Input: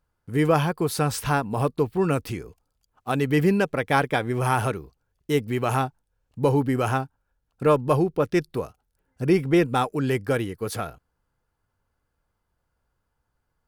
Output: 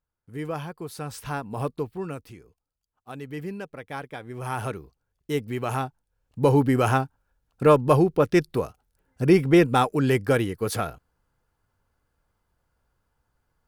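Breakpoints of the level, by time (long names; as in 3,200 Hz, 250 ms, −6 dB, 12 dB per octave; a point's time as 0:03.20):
0:00.98 −11.5 dB
0:01.68 −4.5 dB
0:02.29 −14 dB
0:04.17 −14 dB
0:04.74 −4 dB
0:05.85 −4 dB
0:06.58 +2.5 dB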